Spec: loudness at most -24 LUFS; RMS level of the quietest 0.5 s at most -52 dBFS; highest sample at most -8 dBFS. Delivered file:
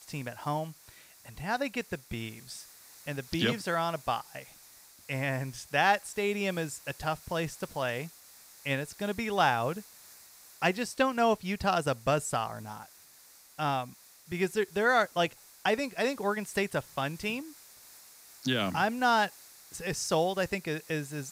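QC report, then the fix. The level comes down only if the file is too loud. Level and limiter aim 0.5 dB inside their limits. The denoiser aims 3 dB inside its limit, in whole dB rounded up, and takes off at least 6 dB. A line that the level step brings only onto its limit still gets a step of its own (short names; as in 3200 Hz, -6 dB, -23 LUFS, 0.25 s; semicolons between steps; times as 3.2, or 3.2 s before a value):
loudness -31.0 LUFS: OK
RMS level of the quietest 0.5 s -57 dBFS: OK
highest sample -11.0 dBFS: OK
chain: none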